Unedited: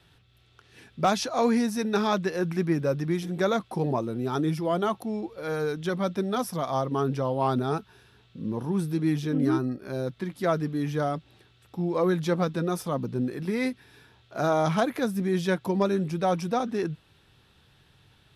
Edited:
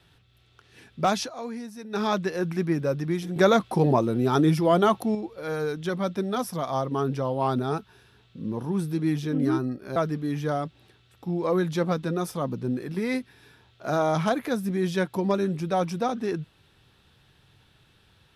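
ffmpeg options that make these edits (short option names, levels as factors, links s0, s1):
-filter_complex "[0:a]asplit=6[s0][s1][s2][s3][s4][s5];[s0]atrim=end=1.35,asetpts=PTS-STARTPTS,afade=t=out:st=1.21:d=0.14:silence=0.251189[s6];[s1]atrim=start=1.35:end=1.89,asetpts=PTS-STARTPTS,volume=0.251[s7];[s2]atrim=start=1.89:end=3.362,asetpts=PTS-STARTPTS,afade=t=in:d=0.14:silence=0.251189[s8];[s3]atrim=start=3.358:end=5.152,asetpts=PTS-STARTPTS,volume=2[s9];[s4]atrim=start=5.148:end=9.962[s10];[s5]atrim=start=10.468[s11];[s6][s7][s8]concat=n=3:v=0:a=1[s12];[s12][s9]acrossfade=d=0.004:c1=hsin:c2=hsin[s13];[s13][s10]acrossfade=d=0.004:c1=hsin:c2=hsin[s14];[s14][s11]acrossfade=d=0.004:c1=hsin:c2=hsin"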